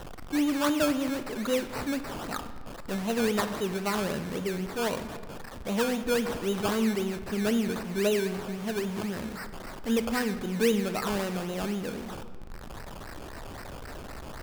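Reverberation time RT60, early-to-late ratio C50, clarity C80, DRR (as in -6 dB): 1.9 s, 11.0 dB, 12.5 dB, 10.0 dB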